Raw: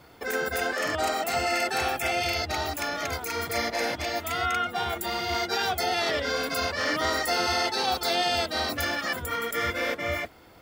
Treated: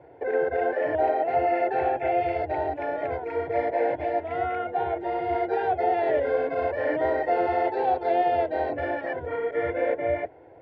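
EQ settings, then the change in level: HPF 130 Hz 12 dB/oct; LPF 1600 Hz 24 dB/oct; fixed phaser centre 510 Hz, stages 4; +7.5 dB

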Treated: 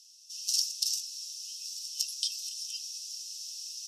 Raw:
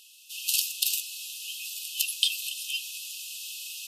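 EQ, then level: ladder band-pass 5800 Hz, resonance 80%; +4.5 dB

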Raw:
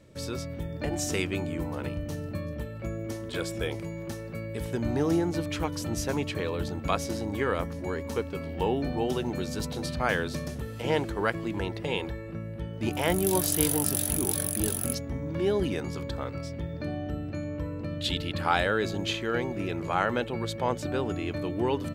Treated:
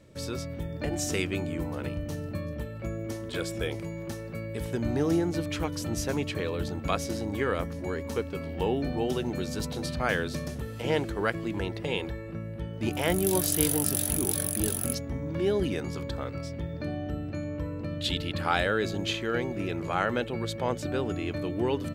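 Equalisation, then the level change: dynamic EQ 930 Hz, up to -4 dB, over -44 dBFS, Q 2.6; 0.0 dB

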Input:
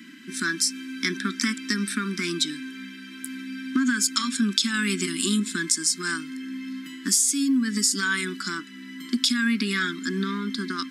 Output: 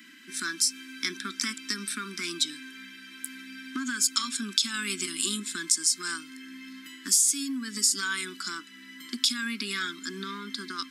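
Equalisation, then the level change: HPF 700 Hz 6 dB/oct; dynamic EQ 1800 Hz, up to -6 dB, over -43 dBFS, Q 2.9; high shelf 11000 Hz +4.5 dB; -2.0 dB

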